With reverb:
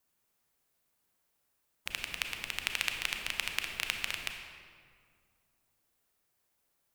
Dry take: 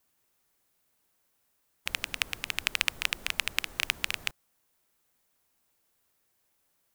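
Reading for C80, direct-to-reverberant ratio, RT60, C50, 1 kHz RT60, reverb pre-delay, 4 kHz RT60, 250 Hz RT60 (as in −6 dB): 6.0 dB, 4.0 dB, 2.1 s, 4.5 dB, 2.0 s, 29 ms, 1.3 s, 2.5 s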